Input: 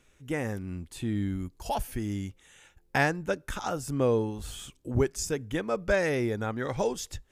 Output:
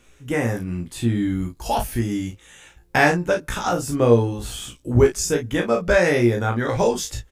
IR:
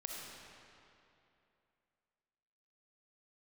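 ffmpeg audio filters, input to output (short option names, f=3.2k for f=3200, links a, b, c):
-af "aecho=1:1:17|34|53:0.562|0.562|0.299,volume=7dB"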